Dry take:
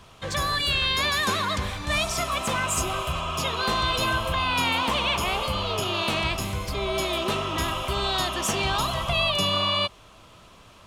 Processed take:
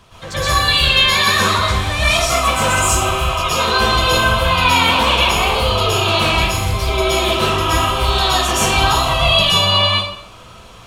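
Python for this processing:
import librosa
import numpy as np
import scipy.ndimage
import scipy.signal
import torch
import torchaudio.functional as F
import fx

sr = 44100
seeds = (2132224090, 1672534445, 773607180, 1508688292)

y = fx.rev_plate(x, sr, seeds[0], rt60_s=0.62, hf_ratio=0.9, predelay_ms=105, drr_db=-9.0)
y = y * librosa.db_to_amplitude(1.0)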